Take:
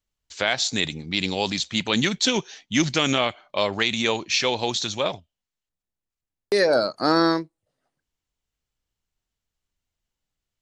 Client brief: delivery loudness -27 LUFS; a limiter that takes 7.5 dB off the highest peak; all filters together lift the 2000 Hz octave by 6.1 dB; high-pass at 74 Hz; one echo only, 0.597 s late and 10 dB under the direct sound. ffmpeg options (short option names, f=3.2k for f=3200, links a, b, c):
-af "highpass=74,equalizer=f=2k:t=o:g=7.5,alimiter=limit=-10dB:level=0:latency=1,aecho=1:1:597:0.316,volume=-3.5dB"